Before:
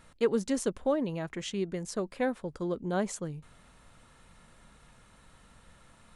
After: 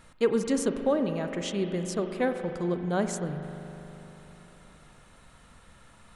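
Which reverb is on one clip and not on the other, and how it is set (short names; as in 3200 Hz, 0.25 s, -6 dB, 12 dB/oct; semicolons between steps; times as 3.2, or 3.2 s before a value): spring tank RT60 3.6 s, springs 40 ms, chirp 75 ms, DRR 6.5 dB; gain +2.5 dB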